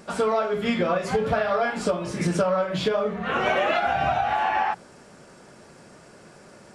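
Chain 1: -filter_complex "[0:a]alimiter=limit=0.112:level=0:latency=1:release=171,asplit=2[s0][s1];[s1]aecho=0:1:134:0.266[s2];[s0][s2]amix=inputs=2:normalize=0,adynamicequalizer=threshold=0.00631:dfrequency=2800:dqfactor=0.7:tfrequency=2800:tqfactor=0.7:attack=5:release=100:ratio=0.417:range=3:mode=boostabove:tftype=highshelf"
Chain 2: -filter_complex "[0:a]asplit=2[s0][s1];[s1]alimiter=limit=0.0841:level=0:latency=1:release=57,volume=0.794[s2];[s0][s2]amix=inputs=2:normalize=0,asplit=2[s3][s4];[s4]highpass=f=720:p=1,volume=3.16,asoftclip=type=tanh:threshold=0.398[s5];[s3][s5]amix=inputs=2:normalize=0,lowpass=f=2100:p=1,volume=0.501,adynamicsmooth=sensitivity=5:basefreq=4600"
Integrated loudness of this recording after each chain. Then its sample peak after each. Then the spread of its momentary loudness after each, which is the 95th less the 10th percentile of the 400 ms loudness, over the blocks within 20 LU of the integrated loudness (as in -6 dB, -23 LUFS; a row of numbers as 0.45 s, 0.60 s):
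-27.5 LUFS, -20.0 LUFS; -16.0 dBFS, -9.0 dBFS; 3 LU, 5 LU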